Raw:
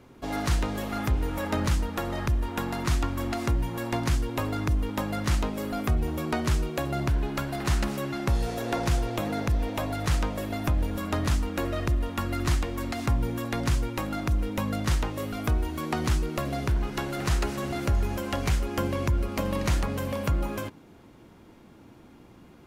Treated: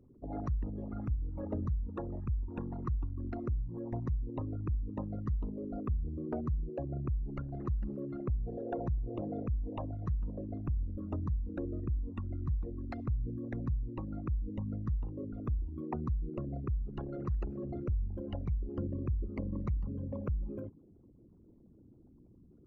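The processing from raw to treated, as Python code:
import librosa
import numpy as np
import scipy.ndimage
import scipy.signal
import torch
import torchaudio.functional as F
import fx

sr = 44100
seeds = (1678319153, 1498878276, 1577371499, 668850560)

y = fx.envelope_sharpen(x, sr, power=3.0)
y = y * 10.0 ** (-8.0 / 20.0)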